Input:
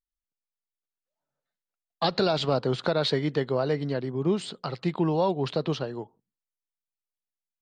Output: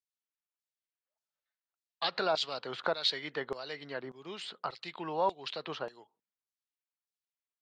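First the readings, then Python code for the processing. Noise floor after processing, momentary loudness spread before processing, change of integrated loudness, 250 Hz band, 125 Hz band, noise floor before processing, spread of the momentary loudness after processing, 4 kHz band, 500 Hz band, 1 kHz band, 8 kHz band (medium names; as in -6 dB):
under -85 dBFS, 7 LU, -8.0 dB, -17.0 dB, -22.5 dB, under -85 dBFS, 12 LU, -2.0 dB, -10.0 dB, -4.0 dB, -5.5 dB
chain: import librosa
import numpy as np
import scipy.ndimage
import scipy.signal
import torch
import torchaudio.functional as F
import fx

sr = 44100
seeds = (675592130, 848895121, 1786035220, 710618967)

y = fx.filter_lfo_bandpass(x, sr, shape='saw_down', hz=1.7, low_hz=1000.0, high_hz=6000.0, q=0.98)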